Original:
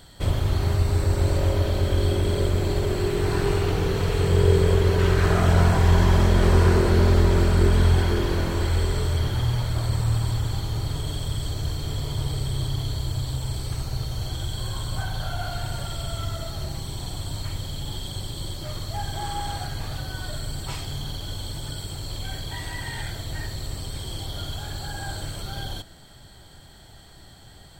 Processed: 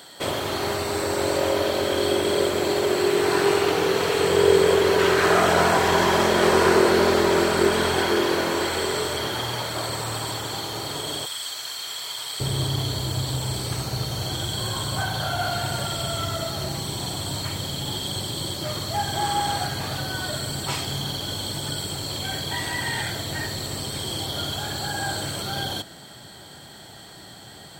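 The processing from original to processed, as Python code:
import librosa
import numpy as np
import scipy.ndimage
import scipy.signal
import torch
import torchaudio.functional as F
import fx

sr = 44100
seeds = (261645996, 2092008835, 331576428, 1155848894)

y = fx.highpass(x, sr, hz=fx.steps((0.0, 350.0), (11.26, 1300.0), (12.4, 160.0)), slope=12)
y = y * 10.0 ** (7.5 / 20.0)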